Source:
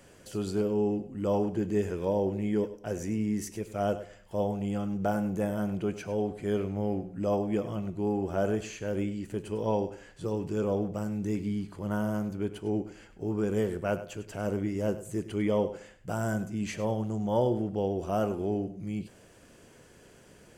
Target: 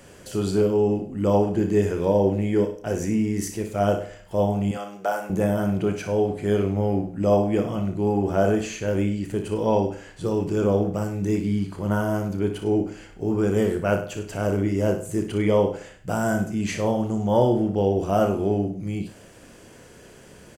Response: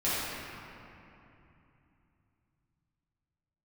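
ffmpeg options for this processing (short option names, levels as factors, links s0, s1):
-filter_complex "[0:a]asettb=1/sr,asplit=3[s0][s1][s2];[s0]atrim=end=4.714[s3];[s1]atrim=start=4.71:end=5.3,asetpts=PTS-STARTPTS,afade=t=in:d=0.004:c=qsin,afade=t=out:st=0.586:d=0.004:c=qsin,highpass=620[s4];[s2]atrim=start=5.296[s5];[s3][s4]acrossfade=d=0.004:c1=hsin:c2=qsin[s6];[s6][s5]acrossfade=d=0.004:c1=qsin:c2=hsin,aecho=1:1:31|59:0.335|0.355,volume=2.24"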